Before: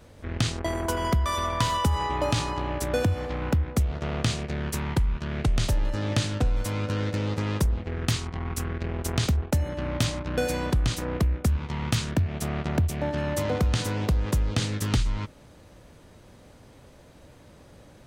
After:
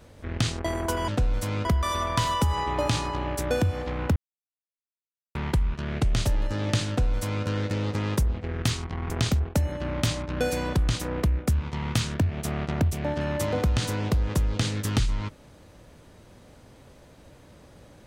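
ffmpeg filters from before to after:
ffmpeg -i in.wav -filter_complex "[0:a]asplit=6[link_01][link_02][link_03][link_04][link_05][link_06];[link_01]atrim=end=1.082[link_07];[link_02]atrim=start=6.308:end=6.882[link_08];[link_03]atrim=start=1.078:end=3.59,asetpts=PTS-STARTPTS,afade=type=out:start_time=2.508:duration=0.004:curve=hsin[link_09];[link_04]atrim=start=3.59:end=4.78,asetpts=PTS-STARTPTS,volume=0[link_10];[link_05]atrim=start=4.78:end=8.532,asetpts=PTS-STARTPTS,afade=type=in:duration=0.004:curve=hsin[link_11];[link_06]atrim=start=9.068[link_12];[link_07][link_08]acrossfade=duration=0.004:curve1=hsin:curve2=hsin[link_13];[link_09][link_10][link_11]concat=n=3:v=0:a=1[link_14];[link_13][link_14]acrossfade=duration=0.004:curve1=hsin:curve2=hsin[link_15];[link_15][link_12]acrossfade=duration=0.004:curve1=hsin:curve2=hsin" out.wav

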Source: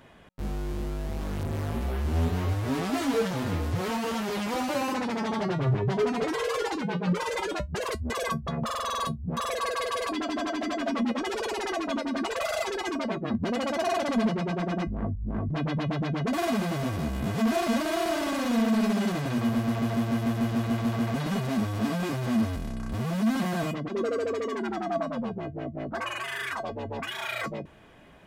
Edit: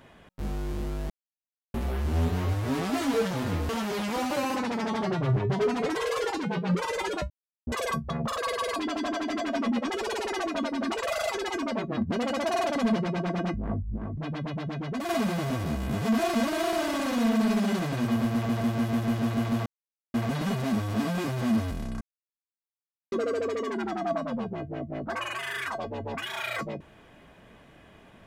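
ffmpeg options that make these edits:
ffmpeg -i in.wav -filter_complex "[0:a]asplit=12[link_01][link_02][link_03][link_04][link_05][link_06][link_07][link_08][link_09][link_10][link_11][link_12];[link_01]atrim=end=1.1,asetpts=PTS-STARTPTS,afade=type=out:start_time=1.096:duration=0.004:curve=hsin[link_13];[link_02]atrim=start=1.1:end=1.74,asetpts=PTS-STARTPTS,volume=0[link_14];[link_03]atrim=start=1.74:end=3.692,asetpts=PTS-STARTPTS,afade=type=in:duration=0.004:curve=hsin[link_15];[link_04]atrim=start=4.068:end=7.68,asetpts=PTS-STARTPTS,afade=type=out:start_time=3.608:duration=0.004:curve=hsin[link_16];[link_05]atrim=start=7.68:end=8.05,asetpts=PTS-STARTPTS,volume=0[link_17];[link_06]atrim=start=8.05:end=8.762,asetpts=PTS-STARTPTS,afade=type=in:duration=0.004:curve=hsin[link_18];[link_07]atrim=start=9.708:end=15.302[link_19];[link_08]atrim=start=15.298:end=16.422,asetpts=PTS-STARTPTS,volume=-4.5dB[link_20];[link_09]atrim=start=16.418:end=20.99,asetpts=PTS-STARTPTS,afade=type=out:start_time=4.568:duration=0.004:curve=hsin,apad=pad_dur=0.48[link_21];[link_10]atrim=start=20.99:end=22.86,asetpts=PTS-STARTPTS,afade=type=in:duration=0.004:curve=hsin,afade=type=out:start_time=1.866:duration=0.004:curve=hsin[link_22];[link_11]atrim=start=22.86:end=23.97,asetpts=PTS-STARTPTS,volume=0[link_23];[link_12]atrim=start=23.97,asetpts=PTS-STARTPTS,afade=type=in:duration=0.004:curve=hsin[link_24];[link_13][link_14][link_15]concat=n=3:v=0:a=1[link_25];[link_16][link_17][link_18]concat=n=3:v=0:a=1[link_26];[link_25][link_26]acrossfade=duration=0.004:curve1=hsin:curve2=hsin[link_27];[link_27][link_19]acrossfade=duration=0.004:curve1=hsin:curve2=hsin[link_28];[link_28][link_20]acrossfade=duration=0.004:curve1=hsin:curve2=hsin[link_29];[link_21][link_22][link_23][link_24]concat=n=4:v=0:a=1[link_30];[link_29][link_30]acrossfade=duration=0.004:curve1=hsin:curve2=hsin" out.wav

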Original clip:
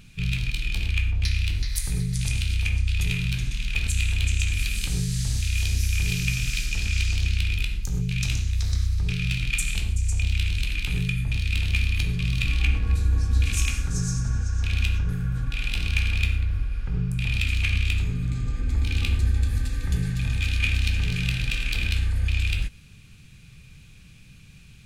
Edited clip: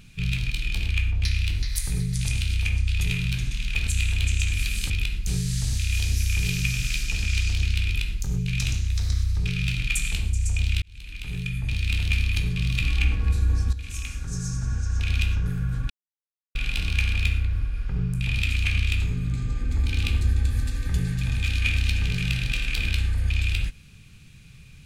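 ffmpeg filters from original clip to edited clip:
ffmpeg -i in.wav -filter_complex "[0:a]asplit=6[link_01][link_02][link_03][link_04][link_05][link_06];[link_01]atrim=end=4.902[link_07];[link_02]atrim=start=7.488:end=7.862[link_08];[link_03]atrim=start=4.898:end=10.45,asetpts=PTS-STARTPTS,afade=type=out:start_time=5.548:duration=0.004:curve=hsin[link_09];[link_04]atrim=start=10.45:end=13.36,asetpts=PTS-STARTPTS,afade=type=in:duration=1.01,afade=type=out:start_time=2.906:duration=0.004:curve=hsin:silence=0.188365[link_10];[link_05]atrim=start=13.36:end=15.53,asetpts=PTS-STARTPTS,afade=type=in:duration=1.2:silence=0.188365,afade=type=out:start_time=2.166:duration=0.004:curve=hsin,apad=pad_dur=0.65[link_11];[link_06]atrim=start=15.53,asetpts=PTS-STARTPTS,afade=type=in:duration=0.004:curve=hsin[link_12];[link_07][link_08]acrossfade=duration=0.004:curve1=hsin:curve2=hsin[link_13];[link_09][link_10][link_11][link_12]concat=n=4:v=0:a=1[link_14];[link_13][link_14]acrossfade=duration=0.004:curve1=hsin:curve2=hsin" out.wav

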